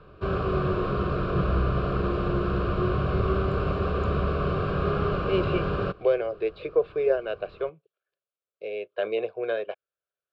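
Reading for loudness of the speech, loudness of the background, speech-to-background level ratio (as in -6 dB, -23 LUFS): -29.0 LUFS, -27.0 LUFS, -2.0 dB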